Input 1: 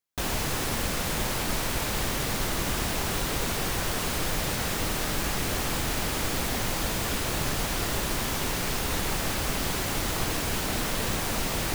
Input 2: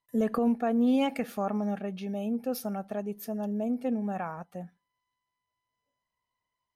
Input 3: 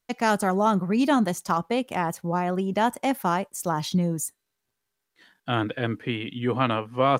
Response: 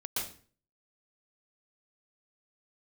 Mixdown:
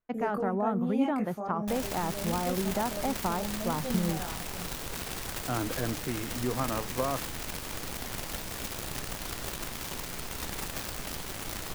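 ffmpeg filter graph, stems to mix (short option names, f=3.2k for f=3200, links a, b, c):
-filter_complex "[0:a]acrusher=bits=5:dc=4:mix=0:aa=0.000001,adelay=1500,volume=-9dB[a];[1:a]agate=range=-33dB:threshold=-46dB:ratio=3:detection=peak,equalizer=f=3.7k:t=o:w=1.4:g=-6,flanger=delay=17.5:depth=6:speed=1.1,volume=-2.5dB[b];[2:a]acompressor=threshold=-22dB:ratio=6,lowpass=1.6k,volume=-4dB[c];[a][b][c]amix=inputs=3:normalize=0"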